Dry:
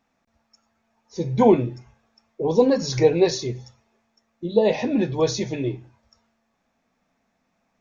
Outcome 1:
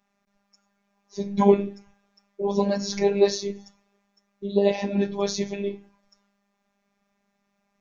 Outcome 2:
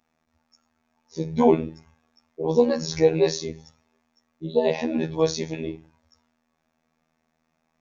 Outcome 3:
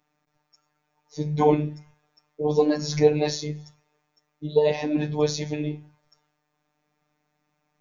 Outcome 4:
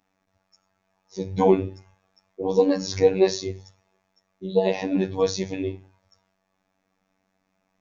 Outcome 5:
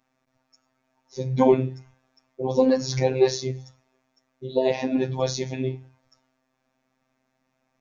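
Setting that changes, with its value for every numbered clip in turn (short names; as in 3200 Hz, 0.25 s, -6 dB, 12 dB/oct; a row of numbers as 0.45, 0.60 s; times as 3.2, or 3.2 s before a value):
robotiser, frequency: 200, 80, 150, 95, 130 Hz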